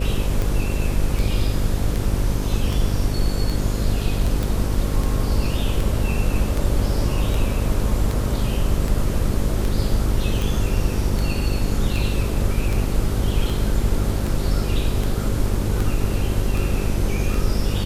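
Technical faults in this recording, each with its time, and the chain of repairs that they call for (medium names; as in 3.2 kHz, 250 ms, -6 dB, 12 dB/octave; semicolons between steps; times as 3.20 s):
buzz 50 Hz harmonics 11 -24 dBFS
tick 78 rpm
4.43 s: pop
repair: de-click; de-hum 50 Hz, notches 11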